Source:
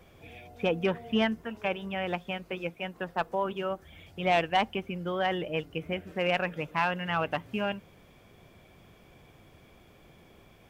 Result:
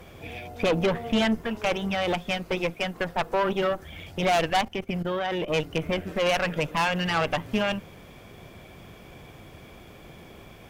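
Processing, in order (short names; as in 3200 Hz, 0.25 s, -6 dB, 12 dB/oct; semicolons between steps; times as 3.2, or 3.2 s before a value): in parallel at +2 dB: limiter -25 dBFS, peak gain reduction 10 dB; 4.61–5.48 on the sum: level quantiser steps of 15 dB; tube stage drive 25 dB, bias 0.75; gain +7 dB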